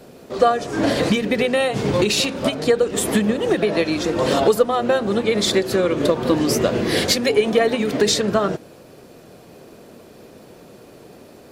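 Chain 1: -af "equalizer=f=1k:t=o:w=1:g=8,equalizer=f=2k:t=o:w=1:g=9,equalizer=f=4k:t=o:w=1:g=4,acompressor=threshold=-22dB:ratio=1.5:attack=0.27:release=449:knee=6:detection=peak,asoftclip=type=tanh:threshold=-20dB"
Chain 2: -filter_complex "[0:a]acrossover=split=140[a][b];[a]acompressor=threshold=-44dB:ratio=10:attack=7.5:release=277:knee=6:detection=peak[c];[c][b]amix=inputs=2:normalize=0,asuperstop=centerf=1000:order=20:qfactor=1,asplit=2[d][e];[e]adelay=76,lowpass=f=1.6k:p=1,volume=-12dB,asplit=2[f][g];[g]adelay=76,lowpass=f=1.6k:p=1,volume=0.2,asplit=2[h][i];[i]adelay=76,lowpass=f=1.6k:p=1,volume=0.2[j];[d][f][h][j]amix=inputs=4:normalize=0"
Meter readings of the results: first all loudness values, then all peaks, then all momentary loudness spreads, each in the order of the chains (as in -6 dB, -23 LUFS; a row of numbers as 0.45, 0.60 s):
-24.5, -19.5 LUFS; -20.0, -4.0 dBFS; 18, 4 LU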